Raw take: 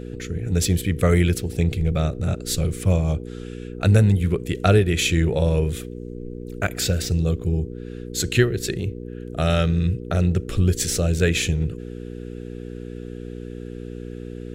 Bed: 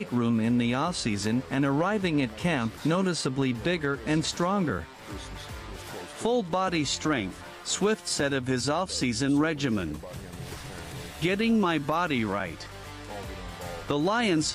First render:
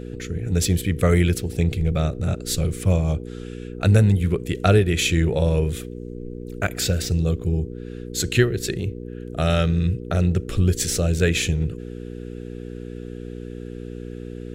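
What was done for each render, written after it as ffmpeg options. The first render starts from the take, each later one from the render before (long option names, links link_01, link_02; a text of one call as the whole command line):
ffmpeg -i in.wav -af anull out.wav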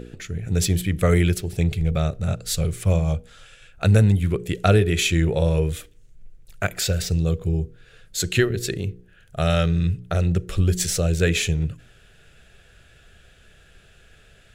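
ffmpeg -i in.wav -af "bandreject=frequency=60:width_type=h:width=4,bandreject=frequency=120:width_type=h:width=4,bandreject=frequency=180:width_type=h:width=4,bandreject=frequency=240:width_type=h:width=4,bandreject=frequency=300:width_type=h:width=4,bandreject=frequency=360:width_type=h:width=4,bandreject=frequency=420:width_type=h:width=4,bandreject=frequency=480:width_type=h:width=4" out.wav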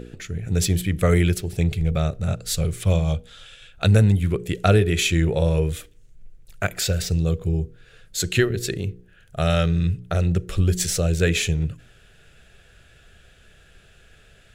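ffmpeg -i in.wav -filter_complex "[0:a]asettb=1/sr,asplit=3[link_01][link_02][link_03];[link_01]atrim=end=2.804[link_04];[link_02]atrim=start=2.8:end=3.88,asetpts=PTS-STARTPTS,afade=type=in:duration=0.004:curve=qsin,afade=type=out:start_time=1.076:duration=0.004:curve=qsin,equalizer=frequency=3500:width=2.6:gain=8.5[link_05];[link_03]atrim=start=3.876[link_06];[link_04][link_05]acrossfade=duration=0.004:curve1=hsin:curve2=qsin[link_07];[link_07][link_06]acrossfade=duration=0.004:curve1=qsin:curve2=hsin" out.wav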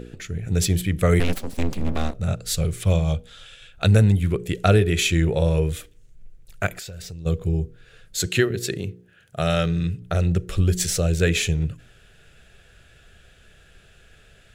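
ffmpeg -i in.wav -filter_complex "[0:a]asplit=3[link_01][link_02][link_03];[link_01]afade=type=out:start_time=1.19:duration=0.02[link_04];[link_02]aeval=exprs='abs(val(0))':channel_layout=same,afade=type=in:start_time=1.19:duration=0.02,afade=type=out:start_time=2.13:duration=0.02[link_05];[link_03]afade=type=in:start_time=2.13:duration=0.02[link_06];[link_04][link_05][link_06]amix=inputs=3:normalize=0,asplit=3[link_07][link_08][link_09];[link_07]afade=type=out:start_time=6.74:duration=0.02[link_10];[link_08]acompressor=threshold=-33dB:ratio=10:attack=3.2:release=140:knee=1:detection=peak,afade=type=in:start_time=6.74:duration=0.02,afade=type=out:start_time=7.25:duration=0.02[link_11];[link_09]afade=type=in:start_time=7.25:duration=0.02[link_12];[link_10][link_11][link_12]amix=inputs=3:normalize=0,asettb=1/sr,asplit=3[link_13][link_14][link_15];[link_13]atrim=end=8.264[link_16];[link_14]atrim=start=8.26:end=10.02,asetpts=PTS-STARTPTS,afade=type=in:duration=0.004:curve=qsin,afade=type=out:start_time=1.756:duration=0.004:curve=qsin,highpass=110[link_17];[link_15]atrim=start=10.016[link_18];[link_16][link_17]acrossfade=duration=0.004:curve1=hsin:curve2=qsin[link_19];[link_19][link_18]acrossfade=duration=0.004:curve1=qsin:curve2=hsin" out.wav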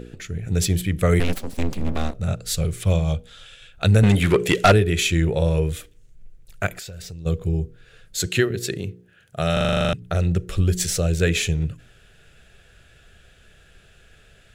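ffmpeg -i in.wav -filter_complex "[0:a]asettb=1/sr,asplit=3[link_01][link_02][link_03];[link_01]atrim=end=4.034[link_04];[link_02]atrim=start=4.03:end=4.72,asetpts=PTS-STARTPTS,afade=type=in:duration=0.004:curve=qsin,afade=type=out:start_time=0.686:duration=0.004:curve=qsin,asplit=2[link_05][link_06];[link_06]highpass=frequency=720:poles=1,volume=23dB,asoftclip=type=tanh:threshold=-4.5dB[link_07];[link_05][link_07]amix=inputs=2:normalize=0,lowpass=frequency=4800:poles=1,volume=-6dB[link_08];[link_03]atrim=start=4.716[link_09];[link_04][link_08]acrossfade=duration=0.004:curve1=hsin:curve2=qsin[link_10];[link_10][link_09]acrossfade=duration=0.004:curve1=qsin:curve2=hsin,asplit=11[link_11][link_12][link_13][link_14][link_15][link_16][link_17][link_18][link_19][link_20][link_21];[link_11]atrim=end=9.572[link_22];[link_12]atrim=start=9.528:end=9.572[link_23];[link_13]atrim=start=9.528:end=9.572[link_24];[link_14]atrim=start=9.528:end=9.572[link_25];[link_15]atrim=start=9.528:end=9.572[link_26];[link_16]atrim=start=9.528:end=9.572[link_27];[link_17]atrim=start=9.528:end=9.572[link_28];[link_18]atrim=start=9.528:end=9.572[link_29];[link_19]atrim=start=9.528:end=9.572[link_30];[link_20]atrim=start=9.528:end=9.572[link_31];[link_21]atrim=start=9.928[link_32];[link_22][link_23]acrossfade=duration=0.004:curve1=hsin:curve2=hsin[link_33];[link_33][link_24]acrossfade=duration=0.004:curve1=hsin:curve2=hsin[link_34];[link_34][link_25]acrossfade=duration=0.004:curve1=hsin:curve2=hsin[link_35];[link_35][link_26]acrossfade=duration=0.004:curve1=hsin:curve2=hsin[link_36];[link_36][link_27]acrossfade=duration=0.004:curve1=hsin:curve2=hsin[link_37];[link_37][link_28]acrossfade=duration=0.004:curve1=hsin:curve2=hsin[link_38];[link_38][link_29]acrossfade=duration=0.004:curve1=hsin:curve2=hsin[link_39];[link_39][link_30]acrossfade=duration=0.004:curve1=hsin:curve2=hsin[link_40];[link_40][link_31]acrossfade=duration=0.004:curve1=hsin:curve2=hsin[link_41];[link_41][link_32]acrossfade=duration=0.004:curve1=hsin:curve2=hsin" out.wav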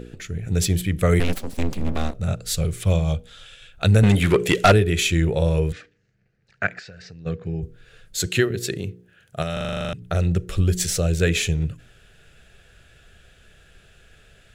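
ffmpeg -i in.wav -filter_complex "[0:a]asettb=1/sr,asplit=3[link_01][link_02][link_03];[link_01]atrim=end=5.724[link_04];[link_02]atrim=start=5.72:end=7.63,asetpts=PTS-STARTPTS,afade=type=in:duration=0.004:curve=qsin,afade=type=out:start_time=1.906:duration=0.004:curve=qsin,highpass=150,equalizer=frequency=350:width_type=q:width=4:gain=-6,equalizer=frequency=570:width_type=q:width=4:gain=-4,equalizer=frequency=1000:width_type=q:width=4:gain=-5,equalizer=frequency=1700:width_type=q:width=4:gain=9,equalizer=frequency=3400:width_type=q:width=4:gain=-10,lowpass=frequency=4900:width=0.5412,lowpass=frequency=4900:width=1.3066[link_05];[link_03]atrim=start=7.626[link_06];[link_04][link_05]acrossfade=duration=0.004:curve1=hsin:curve2=qsin[link_07];[link_07][link_06]acrossfade=duration=0.004:curve1=qsin:curve2=hsin,asettb=1/sr,asplit=3[link_08][link_09][link_10];[link_08]atrim=end=9.424[link_11];[link_09]atrim=start=9.42:end=10.07,asetpts=PTS-STARTPTS,afade=type=in:duration=0.004:curve=qsin,afade=type=out:start_time=0.646:duration=0.004:curve=qsin,acompressor=threshold=-23dB:ratio=4:attack=3.2:release=140:knee=1:detection=peak[link_12];[link_10]atrim=start=10.066[link_13];[link_11][link_12]acrossfade=duration=0.004:curve1=hsin:curve2=qsin[link_14];[link_14][link_13]acrossfade=duration=0.004:curve1=qsin:curve2=hsin" out.wav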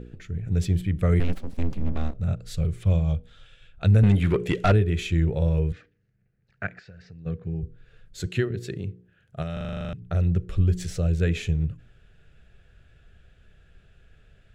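ffmpeg -i in.wav -af "lowpass=frequency=1000:poles=1,equalizer=frequency=590:width_type=o:width=3:gain=-6.5" out.wav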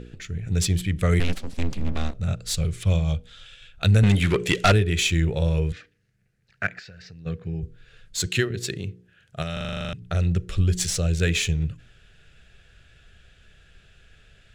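ffmpeg -i in.wav -af "crystalizer=i=7.5:c=0,adynamicsmooth=sensitivity=3.5:basefreq=6500" out.wav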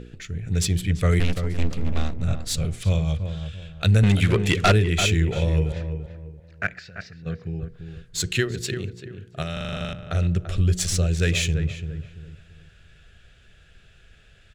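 ffmpeg -i in.wav -filter_complex "[0:a]asplit=2[link_01][link_02];[link_02]adelay=339,lowpass=frequency=1500:poles=1,volume=-8dB,asplit=2[link_03][link_04];[link_04]adelay=339,lowpass=frequency=1500:poles=1,volume=0.33,asplit=2[link_05][link_06];[link_06]adelay=339,lowpass=frequency=1500:poles=1,volume=0.33,asplit=2[link_07][link_08];[link_08]adelay=339,lowpass=frequency=1500:poles=1,volume=0.33[link_09];[link_01][link_03][link_05][link_07][link_09]amix=inputs=5:normalize=0" out.wav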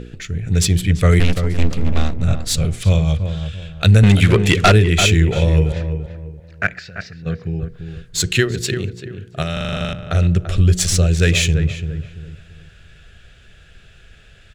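ffmpeg -i in.wav -af "volume=7dB,alimiter=limit=-1dB:level=0:latency=1" out.wav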